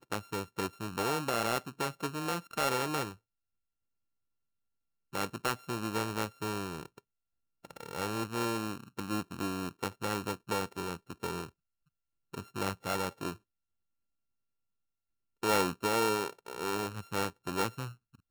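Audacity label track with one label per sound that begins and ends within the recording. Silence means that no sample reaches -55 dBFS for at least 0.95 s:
5.130000	13.360000	sound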